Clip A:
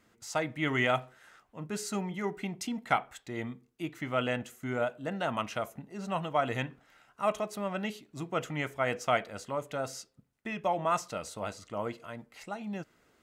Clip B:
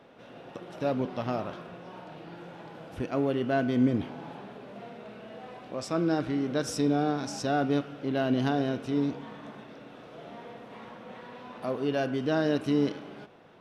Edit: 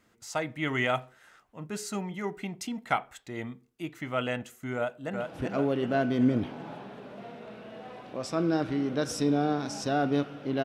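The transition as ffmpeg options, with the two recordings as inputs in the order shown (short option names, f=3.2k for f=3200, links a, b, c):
-filter_complex "[0:a]apad=whole_dur=10.64,atrim=end=10.64,atrim=end=5.212[a];[1:a]atrim=start=2.788:end=8.22[b];[a][b]acrossfade=d=0.004:c1=hsin:c2=hsin,asplit=2[c][d];[d]afade=t=in:st=4.75:d=0.01,afade=t=out:st=5.21:d=0.01,aecho=0:1:380|760|1140|1520|1900|2280|2660|3040|3420:0.630957|0.378574|0.227145|0.136287|0.0817721|0.0490632|0.0294379|0.0176628|0.0105977[e];[c][e]amix=inputs=2:normalize=0"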